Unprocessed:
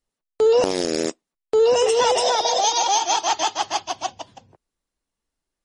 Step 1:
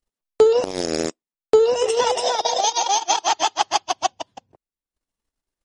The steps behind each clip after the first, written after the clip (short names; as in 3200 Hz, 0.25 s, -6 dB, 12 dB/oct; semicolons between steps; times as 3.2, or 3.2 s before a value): transient shaper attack +9 dB, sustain -12 dB; gain -2 dB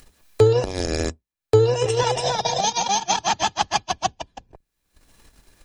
octaver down 2 oct, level +3 dB; upward compressor, threshold -26 dBFS; small resonant body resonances 1700/2400/4000 Hz, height 10 dB; gain -2 dB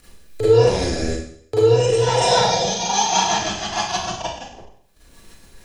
limiter -15.5 dBFS, peak gain reduction 11 dB; rotary speaker horn 1.2 Hz, later 7 Hz, at 3.67; Schroeder reverb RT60 0.62 s, combs from 33 ms, DRR -9.5 dB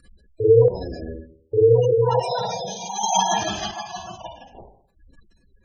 added harmonics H 4 -26 dB, 7 -44 dB, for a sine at -3.5 dBFS; spectral gate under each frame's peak -15 dB strong; chopper 0.66 Hz, depth 60%, duty 45%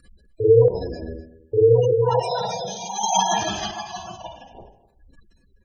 echo 0.251 s -18.5 dB